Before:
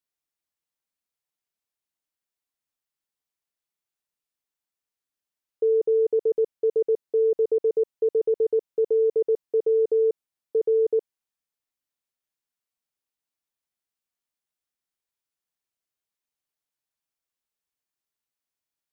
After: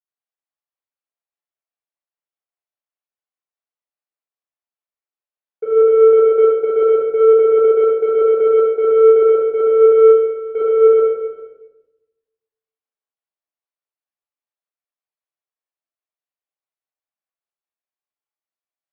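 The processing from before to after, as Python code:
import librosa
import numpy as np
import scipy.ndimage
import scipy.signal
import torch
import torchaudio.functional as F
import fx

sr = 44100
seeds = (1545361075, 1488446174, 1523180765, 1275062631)

p1 = scipy.signal.sosfilt(scipy.signal.butter(2, 500.0, 'highpass', fs=sr, output='sos'), x)
p2 = fx.peak_eq(p1, sr, hz=640.0, db=5.0, octaves=1.6)
p3 = fx.rider(p2, sr, range_db=3, speed_s=0.5)
p4 = p2 + F.gain(torch.from_numpy(p3), 1.5).numpy()
p5 = 10.0 ** (-16.0 / 20.0) * np.tanh(p4 / 10.0 ** (-16.0 / 20.0))
p6 = fx.volume_shaper(p5, sr, bpm=149, per_beat=2, depth_db=-6, release_ms=79.0, shape='slow start')
p7 = fx.air_absorb(p6, sr, metres=230.0)
p8 = p7 + 10.0 ** (-14.0 / 20.0) * np.pad(p7, (int(400 * sr / 1000.0), 0))[:len(p7)]
p9 = fx.room_shoebox(p8, sr, seeds[0], volume_m3=780.0, walls='mixed', distance_m=3.5)
y = fx.band_widen(p9, sr, depth_pct=40)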